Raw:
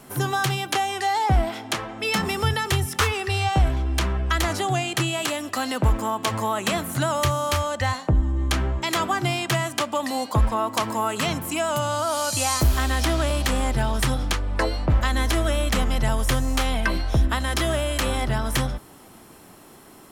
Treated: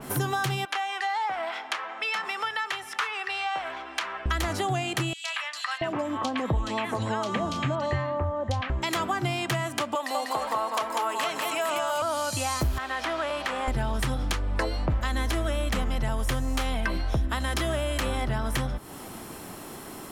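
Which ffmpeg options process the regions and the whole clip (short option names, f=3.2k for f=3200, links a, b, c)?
-filter_complex "[0:a]asettb=1/sr,asplit=3[a][b][c];[a]atrim=end=0.654[d];[b]atrim=start=0.65:end=4.26,asetpts=PTS-STARTPTS,afade=t=in:d=0.004:c=qsin,afade=t=out:st=3.606:d=0.004:c=qsin,highpass=1.1k,aemphasis=mode=reproduction:type=75fm[e];[c]atrim=start=4.256[f];[d][e]acrossfade=d=0.004:c1=hsin:c2=qsin[g];[g][f]acrossfade=d=0.004:c1=qsin:c2=hsin,asettb=1/sr,asplit=3[h][i][j];[h]atrim=end=5.134[k];[i]atrim=start=5.13:end=8.7,asetpts=PTS-STARTPTS,afade=t=in:d=0.004:c=qsin,afade=t=out:st=3.566:d=0.004:c=qsin,lowpass=5.2k,bandreject=f=1.4k:w=13,acrossover=split=1100|3300[l][m][n];[m]adelay=110[o];[l]adelay=680[p];[p][o][n]amix=inputs=3:normalize=0,atrim=end_sample=157437[q];[j]atrim=start=8.696[r];[k][q]acrossfade=d=0.004:c1=hsin:c2=qsin[s];[s][r]acrossfade=d=0.004:c1=qsin:c2=hsin,asettb=1/sr,asplit=3[t][u][v];[t]atrim=end=9.954[w];[u]atrim=start=9.95:end=12.02,asetpts=PTS-STARTPTS,afade=t=in:d=0.004:c=qsin,afade=t=out:st=2.066:d=0.004:c=qsin,highpass=510,aecho=1:1:196|458:0.668|0.422,atrim=end_sample=91287[x];[v]atrim=start=12.016[y];[w][x]acrossfade=d=0.004:c1=hsin:c2=qsin[z];[z][y]acrossfade=d=0.004:c1=qsin:c2=hsin,asettb=1/sr,asplit=3[aa][ab][ac];[aa]atrim=end=12.784[ad];[ab]atrim=start=12.78:end=13.68,asetpts=PTS-STARTPTS,afade=t=in:d=0.004:c=qsin,afade=t=out:st=0.896:d=0.004:c=qsin,highpass=f=910:p=1,asplit=2[ae][af];[af]highpass=f=720:p=1,volume=9dB,asoftclip=type=tanh:threshold=-11dB[ag];[ae][ag]amix=inputs=2:normalize=0,lowpass=f=1.2k:p=1,volume=-6dB[ah];[ac]atrim=start=13.676[ai];[ad][ah]acrossfade=d=0.004:c1=hsin:c2=qsin[aj];[aj][ai]acrossfade=d=0.004:c1=qsin:c2=hsin,acompressor=threshold=-35dB:ratio=3,adynamicequalizer=threshold=0.00282:dfrequency=3500:dqfactor=0.7:tfrequency=3500:tqfactor=0.7:attack=5:release=100:ratio=0.375:range=2.5:mode=cutabove:tftype=highshelf,volume=7dB"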